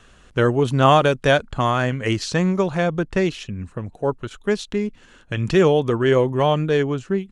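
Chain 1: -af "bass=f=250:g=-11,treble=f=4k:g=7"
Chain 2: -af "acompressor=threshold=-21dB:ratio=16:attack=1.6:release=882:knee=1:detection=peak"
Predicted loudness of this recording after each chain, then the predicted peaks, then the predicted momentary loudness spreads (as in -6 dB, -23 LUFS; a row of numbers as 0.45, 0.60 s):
-21.5, -30.5 LUFS; -2.0, -16.5 dBFS; 13, 4 LU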